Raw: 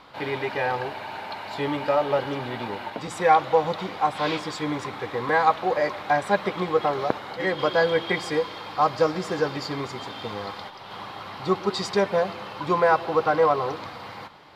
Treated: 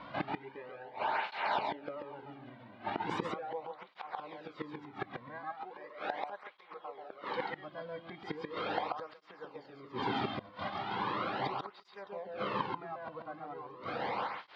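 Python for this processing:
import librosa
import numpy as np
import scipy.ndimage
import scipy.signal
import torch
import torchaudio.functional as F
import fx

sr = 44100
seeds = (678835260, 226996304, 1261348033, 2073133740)

y = fx.highpass(x, sr, hz=480.0, slope=6, at=(5.38, 7.52))
y = fx.gate_flip(y, sr, shuts_db=-22.0, range_db=-25)
y = fx.air_absorb(y, sr, metres=280.0)
y = y + 10.0 ** (-3.5 / 20.0) * np.pad(y, (int(136 * sr / 1000.0), 0))[:len(y)]
y = fx.flanger_cancel(y, sr, hz=0.38, depth_ms=2.5)
y = y * 10.0 ** (5.5 / 20.0)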